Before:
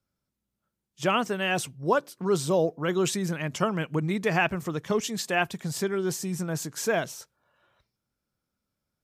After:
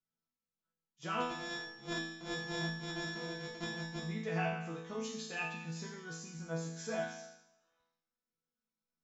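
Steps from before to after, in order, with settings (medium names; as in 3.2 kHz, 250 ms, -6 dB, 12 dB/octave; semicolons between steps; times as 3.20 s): 1.20–4.03 s: sorted samples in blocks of 128 samples; Chebyshev low-pass 7.4 kHz, order 10; chord resonator E3 sus4, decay 0.83 s; trim +10 dB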